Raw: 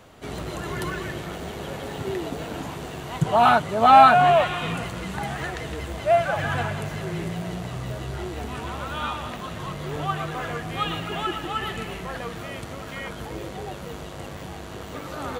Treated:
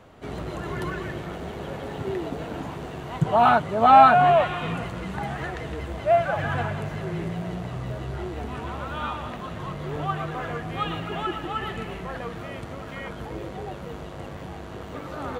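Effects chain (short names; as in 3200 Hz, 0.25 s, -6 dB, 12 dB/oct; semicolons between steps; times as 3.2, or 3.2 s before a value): high shelf 3400 Hz -11 dB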